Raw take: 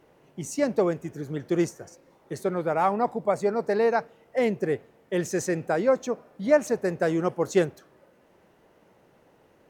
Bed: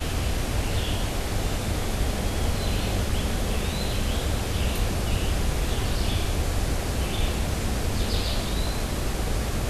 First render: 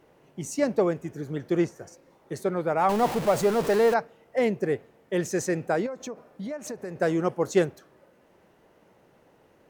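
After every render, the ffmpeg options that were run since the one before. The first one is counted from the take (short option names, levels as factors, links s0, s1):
-filter_complex "[0:a]asettb=1/sr,asplit=3[s0][s1][s2];[s0]atrim=end=0.704[s3];[s1]atrim=start=0.7:end=1.81,asetpts=PTS-STARTPTS,afade=t=in:d=0.004:c=qsin,afade=t=out:st=1.106:d=0.004:c=qsin,acrossover=split=4000[s4][s5];[s5]acompressor=threshold=0.00251:ratio=4:attack=1:release=60[s6];[s4][s6]amix=inputs=2:normalize=0[s7];[s2]atrim=start=1.806[s8];[s3][s7]acrossfade=d=0.004:c1=hsin:c2=qsin[s9];[s9][s8]acrossfade=d=0.004:c1=qsin:c2=hsin,asettb=1/sr,asplit=3[s10][s11][s12];[s10]atrim=end=2.894[s13];[s11]atrim=start=2.89:end=3.94,asetpts=PTS-STARTPTS,afade=t=in:d=0.004:c=qsin,afade=t=out:st=1.046:d=0.004:c=qsin,aeval=exprs='val(0)+0.5*0.0447*sgn(val(0))':c=same[s14];[s12]atrim=start=3.936[s15];[s13][s14]acrossfade=d=0.004:c1=hsin:c2=qsin[s16];[s16][s15]acrossfade=d=0.004:c1=qsin:c2=hsin,asettb=1/sr,asplit=3[s17][s18][s19];[s17]atrim=end=5.864[s20];[s18]atrim=start=5.86:end=6.96,asetpts=PTS-STARTPTS,afade=t=in:d=0.004:c=qsin,afade=t=out:st=1.096:d=0.004:c=qsin,acompressor=threshold=0.0282:ratio=10:attack=3.2:release=140:knee=1:detection=peak[s21];[s19]atrim=start=6.956[s22];[s20][s21]acrossfade=d=0.004:c1=hsin:c2=qsin[s23];[s23][s22]acrossfade=d=0.004:c1=qsin:c2=hsin"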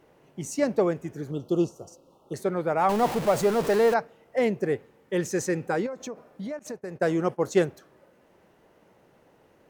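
-filter_complex "[0:a]asettb=1/sr,asplit=3[s0][s1][s2];[s0]atrim=end=1.314[s3];[s1]atrim=start=1.31:end=2.34,asetpts=PTS-STARTPTS,afade=t=in:d=0.004:c=qsin,afade=t=out:st=1.026:d=0.004:c=qsin,asuperstop=centerf=1900:order=20:qfactor=1.5[s4];[s2]atrim=start=2.336[s5];[s3][s4]acrossfade=d=0.004:c1=hsin:c2=qsin[s6];[s6][s5]acrossfade=d=0.004:c1=qsin:c2=hsin,asettb=1/sr,asplit=3[s7][s8][s9];[s7]atrim=end=4.754[s10];[s8]atrim=start=4.75:end=5.93,asetpts=PTS-STARTPTS,afade=t=in:d=0.004:c=qsin,afade=t=out:st=1.176:d=0.004:c=qsin,asuperstop=centerf=660:order=4:qfactor=5.7[s11];[s9]atrim=start=5.926[s12];[s10][s11]acrossfade=d=0.004:c1=hsin:c2=qsin[s13];[s13][s12]acrossfade=d=0.004:c1=qsin:c2=hsin,asettb=1/sr,asplit=3[s14][s15][s16];[s14]atrim=end=6.594[s17];[s15]atrim=start=6.59:end=7.68,asetpts=PTS-STARTPTS,afade=t=in:d=0.004:c=qsin,afade=t=out:st=1.086:d=0.004:c=qsin,agate=range=0.0224:threshold=0.0158:ratio=3:release=100:detection=peak[s18];[s16]atrim=start=7.676[s19];[s17][s18]acrossfade=d=0.004:c1=hsin:c2=qsin[s20];[s20][s19]acrossfade=d=0.004:c1=qsin:c2=hsin"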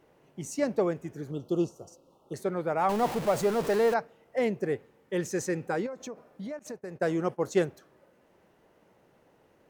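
-af "volume=0.668"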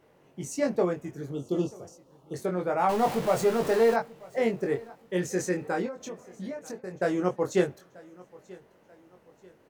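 -filter_complex "[0:a]asplit=2[s0][s1];[s1]adelay=22,volume=0.631[s2];[s0][s2]amix=inputs=2:normalize=0,aecho=1:1:936|1872|2808:0.075|0.0307|0.0126"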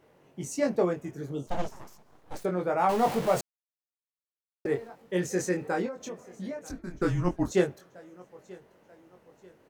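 -filter_complex "[0:a]asplit=3[s0][s1][s2];[s0]afade=t=out:st=1.46:d=0.02[s3];[s1]aeval=exprs='abs(val(0))':c=same,afade=t=in:st=1.46:d=0.02,afade=t=out:st=2.43:d=0.02[s4];[s2]afade=t=in:st=2.43:d=0.02[s5];[s3][s4][s5]amix=inputs=3:normalize=0,asettb=1/sr,asplit=3[s6][s7][s8];[s6]atrim=end=6.704[s9];[s7]atrim=start=6.7:end=7.51,asetpts=PTS-STARTPTS,afade=t=in:d=0.004:c=qsin,afade=t=out:st=0.806:d=0.004:c=qsin,afreqshift=-190[s10];[s8]atrim=start=7.506[s11];[s9][s10]acrossfade=d=0.004:c1=hsin:c2=qsin[s12];[s12][s11]acrossfade=d=0.004:c1=qsin:c2=hsin,asplit=3[s13][s14][s15];[s13]atrim=end=3.41,asetpts=PTS-STARTPTS,afade=t=out:st=3.406:d=0.004:c=hsin[s16];[s14]atrim=start=3.41:end=4.65,asetpts=PTS-STARTPTS,volume=0[s17];[s15]atrim=start=4.65,asetpts=PTS-STARTPTS,afade=t=in:d=0.004:c=hsin[s18];[s16][s17][s18]concat=n=3:v=0:a=1"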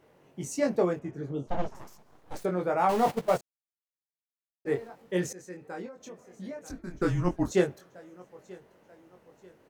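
-filter_complex "[0:a]asettb=1/sr,asplit=3[s0][s1][s2];[s0]atrim=end=0.994[s3];[s1]atrim=start=0.99:end=1.75,asetpts=PTS-STARTPTS,afade=t=in:d=0.004:c=qsin,afade=t=out:st=0.756:d=0.004:c=qsin,aemphasis=mode=reproduction:type=75fm[s4];[s2]atrim=start=1.746[s5];[s3][s4]acrossfade=d=0.004:c1=hsin:c2=qsin[s6];[s6][s5]acrossfade=d=0.004:c1=qsin:c2=hsin,asplit=3[s7][s8][s9];[s7]afade=t=out:st=3.1:d=0.02[s10];[s8]agate=range=0.141:threshold=0.0447:ratio=16:release=100:detection=peak,afade=t=in:st=3.1:d=0.02,afade=t=out:st=4.66:d=0.02[s11];[s9]afade=t=in:st=4.66:d=0.02[s12];[s10][s11][s12]amix=inputs=3:normalize=0,asplit=2[s13][s14];[s13]atrim=end=5.33,asetpts=PTS-STARTPTS,afade=t=out:st=5.326:d=0.004:c=hsin:silence=0.0944061[s15];[s14]atrim=start=5.33,asetpts=PTS-STARTPTS,afade=t=in:d=1.73:silence=0.0944061[s16];[s15][s16]concat=n=2:v=0:a=1"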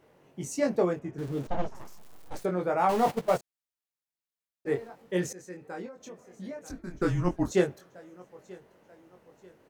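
-filter_complex "[0:a]asettb=1/sr,asplit=3[s0][s1][s2];[s0]atrim=end=1.184[s3];[s1]atrim=start=1.18:end=2.39,asetpts=PTS-STARTPTS,afade=t=in:d=0.004:c=qsin,afade=t=out:st=1.206:d=0.004:c=qsin,aeval=exprs='val(0)+0.5*0.00944*sgn(val(0))':c=same[s4];[s2]atrim=start=2.386[s5];[s3][s4]acrossfade=d=0.004:c1=hsin:c2=qsin[s6];[s6][s5]acrossfade=d=0.004:c1=qsin:c2=hsin"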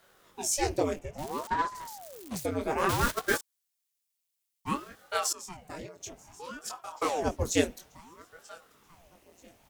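-filter_complex "[0:a]acrossover=split=110[s0][s1];[s1]aexciter=amount=4:drive=2.8:freq=2200[s2];[s0][s2]amix=inputs=2:normalize=0,aeval=exprs='val(0)*sin(2*PI*550*n/s+550*0.85/0.59*sin(2*PI*0.59*n/s))':c=same"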